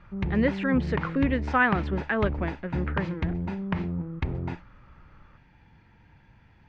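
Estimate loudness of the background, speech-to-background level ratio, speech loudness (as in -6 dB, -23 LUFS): -32.0 LUFS, 4.5 dB, -27.5 LUFS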